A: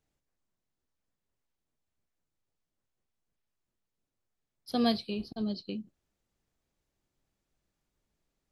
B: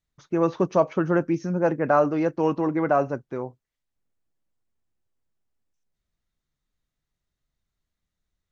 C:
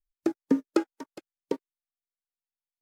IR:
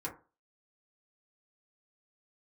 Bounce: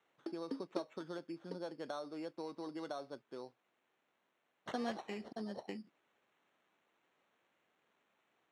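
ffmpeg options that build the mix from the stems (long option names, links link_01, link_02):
-filter_complex "[0:a]aemphasis=mode=production:type=50fm,acompressor=threshold=-40dB:ratio=2,volume=-1dB[link_01];[1:a]acompressor=threshold=-24dB:ratio=10,volume=-15dB[link_02];[2:a]volume=-17dB[link_03];[link_01][link_02][link_03]amix=inputs=3:normalize=0,acrusher=samples=9:mix=1:aa=0.000001,highpass=250,lowpass=4600"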